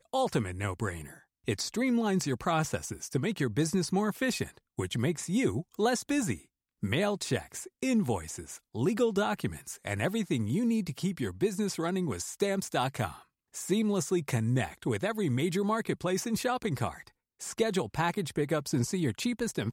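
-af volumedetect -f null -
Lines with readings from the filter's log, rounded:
mean_volume: -30.9 dB
max_volume: -15.1 dB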